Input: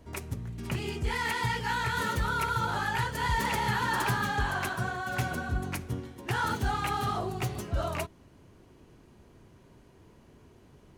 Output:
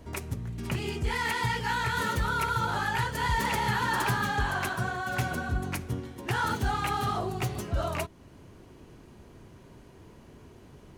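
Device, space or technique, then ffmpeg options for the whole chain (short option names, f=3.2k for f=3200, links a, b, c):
parallel compression: -filter_complex "[0:a]asplit=2[a][b];[b]acompressor=threshold=-44dB:ratio=6,volume=-2dB[c];[a][c]amix=inputs=2:normalize=0"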